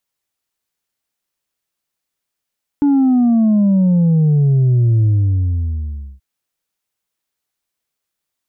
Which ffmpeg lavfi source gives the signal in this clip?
-f lavfi -i "aevalsrc='0.316*clip((3.38-t)/1.16,0,1)*tanh(1.33*sin(2*PI*290*3.38/log(65/290)*(exp(log(65/290)*t/3.38)-1)))/tanh(1.33)':d=3.38:s=44100"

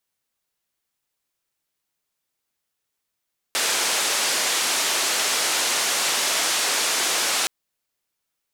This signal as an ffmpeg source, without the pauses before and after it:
-f lavfi -i "anoisesrc=c=white:d=3.92:r=44100:seed=1,highpass=f=370,lowpass=f=8100,volume=-13.3dB"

